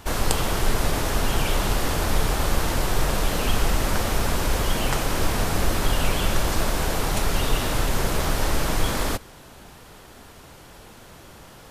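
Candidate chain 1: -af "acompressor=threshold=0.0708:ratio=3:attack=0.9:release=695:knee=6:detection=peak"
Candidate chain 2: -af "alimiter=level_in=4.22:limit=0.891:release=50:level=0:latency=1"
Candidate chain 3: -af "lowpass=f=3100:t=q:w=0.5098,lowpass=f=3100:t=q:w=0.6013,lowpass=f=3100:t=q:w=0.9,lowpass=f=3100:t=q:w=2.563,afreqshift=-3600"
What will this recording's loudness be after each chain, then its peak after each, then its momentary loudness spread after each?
-31.5 LUFS, -13.5 LUFS, -17.5 LUFS; -11.5 dBFS, -1.0 dBFS, -6.0 dBFS; 15 LU, 20 LU, 2 LU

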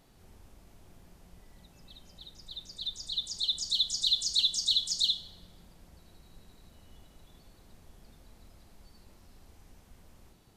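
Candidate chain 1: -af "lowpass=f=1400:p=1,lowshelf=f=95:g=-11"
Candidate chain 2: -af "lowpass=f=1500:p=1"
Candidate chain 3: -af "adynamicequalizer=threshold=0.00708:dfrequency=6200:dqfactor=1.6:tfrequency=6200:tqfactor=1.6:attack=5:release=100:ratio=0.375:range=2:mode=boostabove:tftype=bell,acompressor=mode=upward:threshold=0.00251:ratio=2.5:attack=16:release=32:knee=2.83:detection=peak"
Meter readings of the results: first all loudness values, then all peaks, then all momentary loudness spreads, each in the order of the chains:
-38.0 LUFS, -37.5 LUFS, -26.5 LUFS; -23.5 dBFS, -23.0 dBFS, -13.5 dBFS; 18 LU, 21 LU, 14 LU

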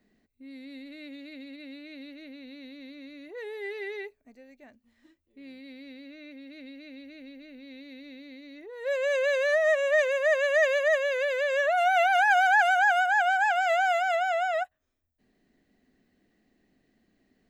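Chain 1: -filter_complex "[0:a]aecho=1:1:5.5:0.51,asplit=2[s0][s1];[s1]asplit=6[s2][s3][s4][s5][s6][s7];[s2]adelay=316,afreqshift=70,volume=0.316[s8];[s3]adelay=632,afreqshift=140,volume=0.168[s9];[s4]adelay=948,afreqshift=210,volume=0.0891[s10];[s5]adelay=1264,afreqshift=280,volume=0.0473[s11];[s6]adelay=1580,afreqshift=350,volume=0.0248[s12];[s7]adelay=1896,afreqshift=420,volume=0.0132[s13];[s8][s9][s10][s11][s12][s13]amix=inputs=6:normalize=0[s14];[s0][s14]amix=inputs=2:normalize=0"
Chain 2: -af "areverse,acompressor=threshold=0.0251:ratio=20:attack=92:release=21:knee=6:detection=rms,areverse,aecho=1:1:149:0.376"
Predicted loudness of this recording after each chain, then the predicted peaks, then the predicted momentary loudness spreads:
-22.5 LUFS, -29.5 LUFS; -9.5 dBFS, -18.0 dBFS; 17 LU, 18 LU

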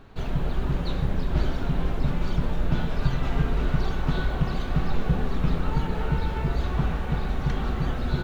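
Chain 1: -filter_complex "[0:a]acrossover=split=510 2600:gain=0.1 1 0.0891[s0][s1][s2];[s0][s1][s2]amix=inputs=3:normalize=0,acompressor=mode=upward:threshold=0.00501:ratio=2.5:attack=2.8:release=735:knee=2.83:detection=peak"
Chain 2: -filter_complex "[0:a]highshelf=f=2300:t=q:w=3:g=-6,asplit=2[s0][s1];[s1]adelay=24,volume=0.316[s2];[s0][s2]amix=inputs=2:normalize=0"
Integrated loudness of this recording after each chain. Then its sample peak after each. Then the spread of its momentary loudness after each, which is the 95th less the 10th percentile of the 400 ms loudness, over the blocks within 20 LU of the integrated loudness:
-38.5 LUFS, -27.5 LUFS; -23.5 dBFS, -8.5 dBFS; 3 LU, 2 LU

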